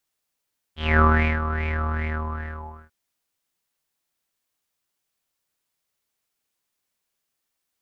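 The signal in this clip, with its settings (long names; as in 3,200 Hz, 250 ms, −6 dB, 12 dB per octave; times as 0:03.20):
subtractive patch with filter wobble D#2, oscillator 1 square, oscillator 2 level −6 dB, filter lowpass, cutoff 1,100 Hz, Q 9.6, filter envelope 1.5 octaves, filter decay 0.13 s, attack 236 ms, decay 0.40 s, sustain −11 dB, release 1.04 s, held 1.10 s, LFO 2.5 Hz, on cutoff 0.5 octaves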